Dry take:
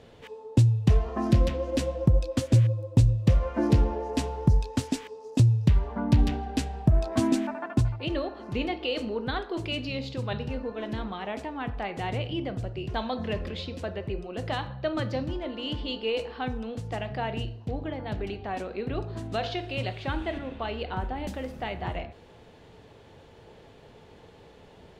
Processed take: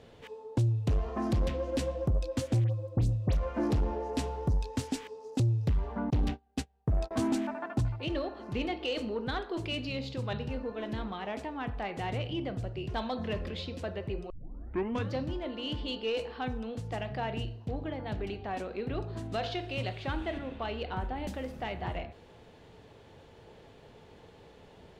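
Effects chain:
0:06.10–0:07.11: noise gate −25 dBFS, range −34 dB
soft clipping −20 dBFS, distortion −10 dB
0:02.64–0:03.37: all-pass dispersion highs, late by 62 ms, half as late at 3,000 Hz
0:14.30: tape start 0.83 s
level −2.5 dB

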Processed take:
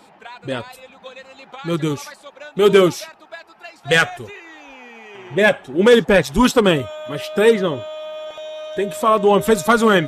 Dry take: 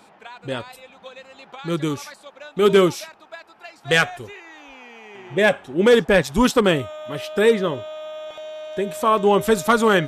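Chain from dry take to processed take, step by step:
spectral magnitudes quantised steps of 15 dB
level +3 dB

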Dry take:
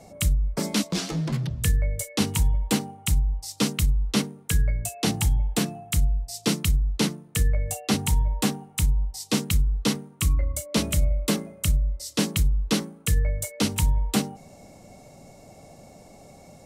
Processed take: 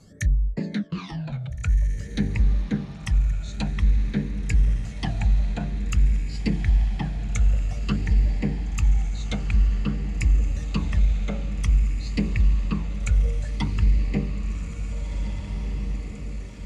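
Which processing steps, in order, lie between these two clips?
treble cut that deepens with the level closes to 1,100 Hz, closed at −18.5 dBFS
all-pass phaser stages 12, 0.51 Hz, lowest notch 330–1,400 Hz
formants moved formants −3 semitones
on a send: feedback delay with all-pass diffusion 1,776 ms, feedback 59%, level −7.5 dB

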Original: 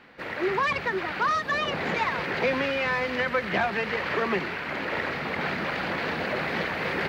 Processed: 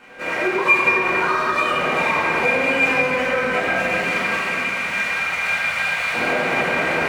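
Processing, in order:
running median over 9 samples
0:03.59–0:06.14: guitar amp tone stack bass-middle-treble 10-0-10
convolution reverb RT60 3.2 s, pre-delay 4 ms, DRR −9.5 dB
downward compressor, threshold −20 dBFS, peak gain reduction 8.5 dB
low-shelf EQ 270 Hz −8 dB
notch filter 1,700 Hz, Q 5.2
hollow resonant body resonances 1,600/2,400 Hz, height 16 dB, ringing for 95 ms
level +4 dB

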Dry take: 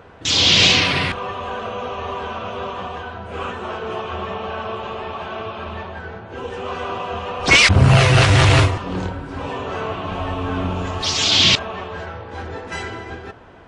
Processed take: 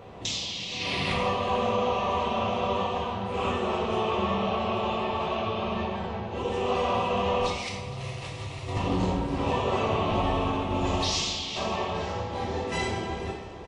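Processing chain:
parametric band 1,500 Hz −13 dB 0.42 octaves
compressor whose output falls as the input rises −25 dBFS, ratio −1
repeating echo 464 ms, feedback 57%, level −17 dB
dense smooth reverb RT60 0.92 s, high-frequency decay 0.9×, DRR −1.5 dB
level −7 dB

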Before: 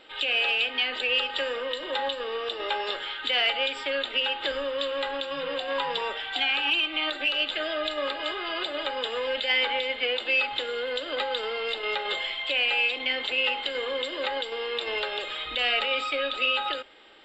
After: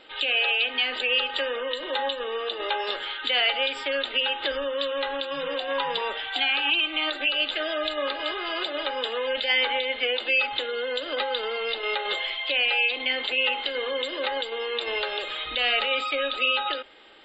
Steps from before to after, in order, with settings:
gate on every frequency bin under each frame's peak −30 dB strong
level +1.5 dB

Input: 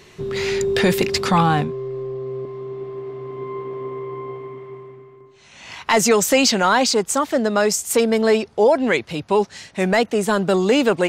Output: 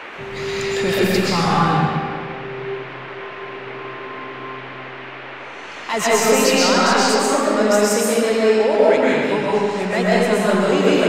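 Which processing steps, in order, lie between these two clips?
comb and all-pass reverb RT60 2.1 s, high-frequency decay 0.8×, pre-delay 85 ms, DRR −7.5 dB
noise in a band 260–2,500 Hz −28 dBFS
level −6.5 dB

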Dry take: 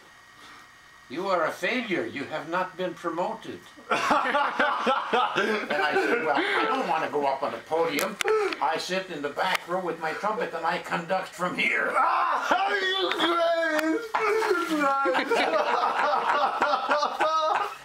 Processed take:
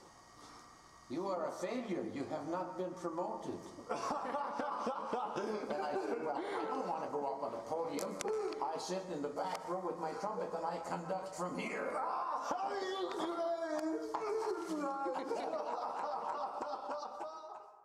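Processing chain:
fade-out on the ending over 3.62 s
low-pass filter 9,400 Hz 12 dB per octave
flat-topped bell 2,300 Hz −13 dB
downward compressor 4 to 1, threshold −34 dBFS, peak gain reduction 13 dB
on a send: convolution reverb RT60 1.2 s, pre-delay 121 ms, DRR 9.5 dB
on the sum: level −3 dB

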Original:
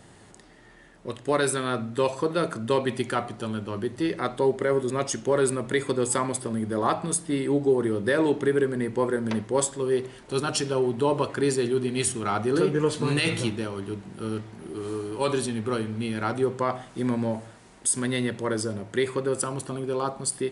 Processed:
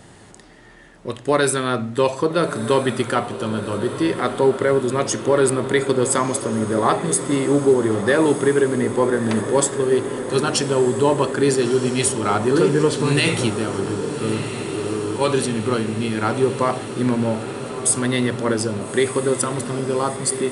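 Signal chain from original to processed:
feedback delay with all-pass diffusion 1,288 ms, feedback 71%, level −11 dB
level +6 dB

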